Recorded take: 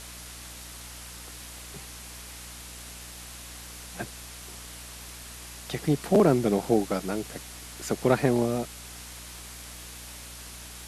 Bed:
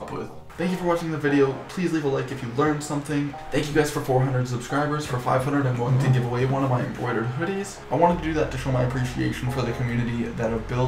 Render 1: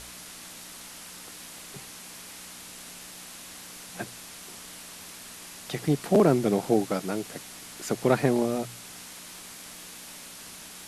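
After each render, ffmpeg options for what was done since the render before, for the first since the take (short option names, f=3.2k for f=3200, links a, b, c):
-af "bandreject=f=60:t=h:w=4,bandreject=f=120:t=h:w=4"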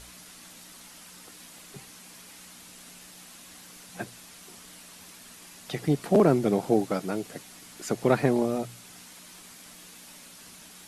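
-af "afftdn=nr=6:nf=-44"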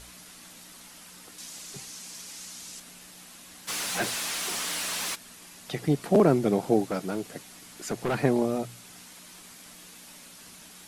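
-filter_complex "[0:a]asettb=1/sr,asplit=3[a][b][c];[a]atrim=end=1.384[d];[b]atrim=start=1.38:end=2.8,asetpts=PTS-STARTPTS,afade=t=in:d=0.004:c=qsin,afade=t=out:st=1.416:d=0.004:c=qsin,equalizer=f=6.1k:t=o:w=1.4:g=10[e];[c]atrim=start=2.796[f];[d][e]acrossfade=d=0.004:c1=hsin:c2=qsin[g];[g][f]acrossfade=d=0.004:c1=qsin:c2=hsin,asplit=3[h][i][j];[h]afade=t=out:st=3.67:d=0.02[k];[i]asplit=2[l][m];[m]highpass=f=720:p=1,volume=29dB,asoftclip=type=tanh:threshold=-20dB[n];[l][n]amix=inputs=2:normalize=0,lowpass=f=7.3k:p=1,volume=-6dB,afade=t=in:st=3.67:d=0.02,afade=t=out:st=5.14:d=0.02[o];[j]afade=t=in:st=5.14:d=0.02[p];[k][o][p]amix=inputs=3:normalize=0,asettb=1/sr,asplit=3[q][r][s];[q]atrim=end=6.894[t];[r]atrim=start=6.89:end=8.2,asetpts=PTS-STARTPTS,afade=t=in:d=0.004:c=qsin,afade=t=out:st=1.306:d=0.004:c=qsin,asoftclip=type=hard:threshold=-23.5dB[u];[s]atrim=start=8.196[v];[t][u]acrossfade=d=0.004:c1=hsin:c2=qsin[w];[w][v]acrossfade=d=0.004:c1=qsin:c2=hsin"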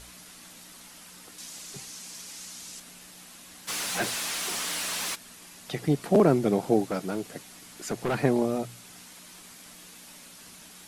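-af anull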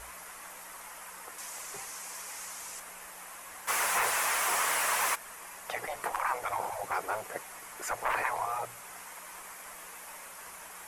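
-af "afftfilt=real='re*lt(hypot(re,im),0.1)':imag='im*lt(hypot(re,im),0.1)':win_size=1024:overlap=0.75,equalizer=f=125:t=o:w=1:g=-9,equalizer=f=250:t=o:w=1:g=-11,equalizer=f=500:t=o:w=1:g=5,equalizer=f=1k:t=o:w=1:g=10,equalizer=f=2k:t=o:w=1:g=6,equalizer=f=4k:t=o:w=1:g=-10,equalizer=f=16k:t=o:w=1:g=5"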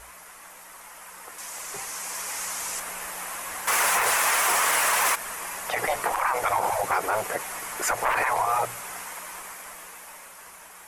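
-af "dynaudnorm=f=230:g=17:m=12dB,alimiter=limit=-14dB:level=0:latency=1:release=47"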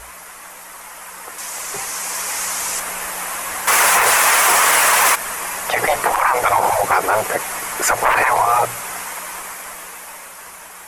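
-af "volume=9dB"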